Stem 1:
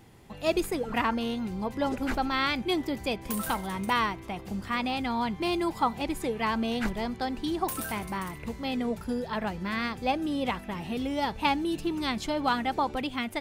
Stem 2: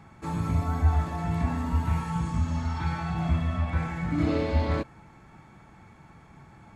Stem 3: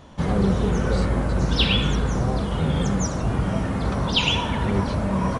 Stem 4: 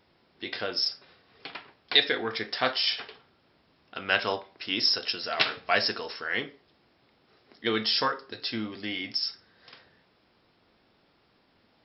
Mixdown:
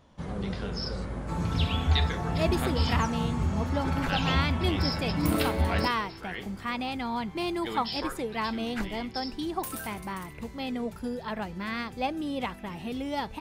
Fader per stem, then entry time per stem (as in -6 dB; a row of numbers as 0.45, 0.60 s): -2.5, -2.0, -13.0, -9.5 dB; 1.95, 1.05, 0.00, 0.00 s